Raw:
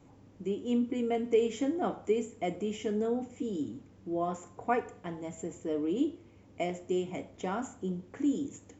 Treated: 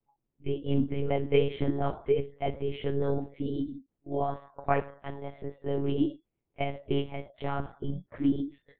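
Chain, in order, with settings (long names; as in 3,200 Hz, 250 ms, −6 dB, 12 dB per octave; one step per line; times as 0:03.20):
noise reduction from a noise print of the clip's start 30 dB
one-pitch LPC vocoder at 8 kHz 140 Hz
level +3 dB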